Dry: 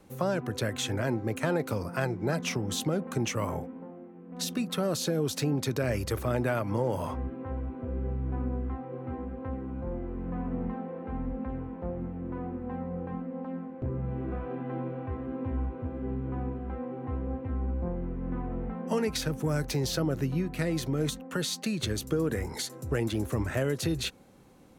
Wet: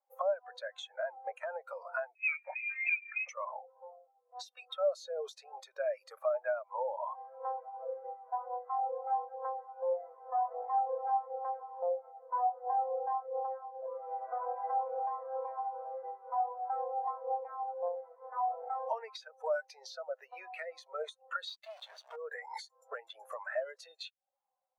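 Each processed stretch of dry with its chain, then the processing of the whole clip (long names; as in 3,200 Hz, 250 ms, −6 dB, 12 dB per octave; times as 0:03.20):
0:02.15–0:03.29: high-pass filter 450 Hz 24 dB per octave + voice inversion scrambler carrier 2,900 Hz
0:21.47–0:22.16: low-pass filter 4,500 Hz + log-companded quantiser 2 bits
whole clip: Butterworth high-pass 600 Hz 36 dB per octave; downward compressor 16 to 1, threshold −43 dBFS; every bin expanded away from the loudest bin 2.5 to 1; level +7 dB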